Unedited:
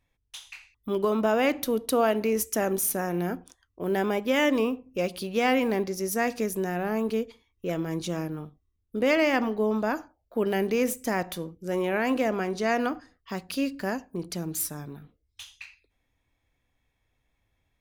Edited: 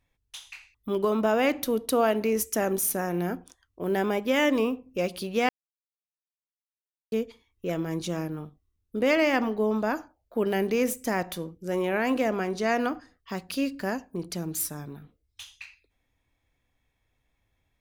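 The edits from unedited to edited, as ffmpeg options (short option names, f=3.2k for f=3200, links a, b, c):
-filter_complex "[0:a]asplit=3[a][b][c];[a]atrim=end=5.49,asetpts=PTS-STARTPTS,afade=t=out:st=5.486:d=0.004:c=hsin[d];[b]atrim=start=5.49:end=7.12,asetpts=PTS-STARTPTS,volume=0[e];[c]atrim=start=7.12,asetpts=PTS-STARTPTS,afade=t=in:d=0.004:c=hsin[f];[d][e][f]concat=n=3:v=0:a=1"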